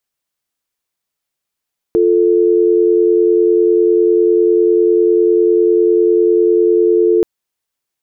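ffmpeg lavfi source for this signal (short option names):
-f lavfi -i "aevalsrc='0.282*(sin(2*PI*350*t)+sin(2*PI*440*t))':d=5.28:s=44100"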